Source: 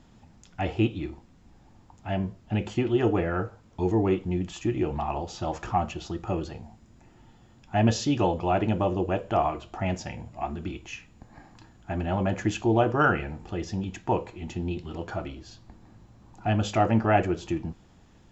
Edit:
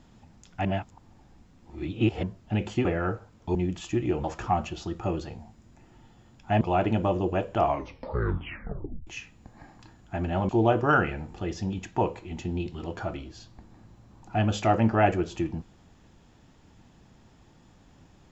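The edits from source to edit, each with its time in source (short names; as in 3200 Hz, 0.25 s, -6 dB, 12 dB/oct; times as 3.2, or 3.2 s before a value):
0.65–2.23 reverse
2.85–3.16 cut
3.86–4.27 cut
4.96–5.48 cut
7.85–8.37 cut
9.4 tape stop 1.43 s
12.25–12.6 cut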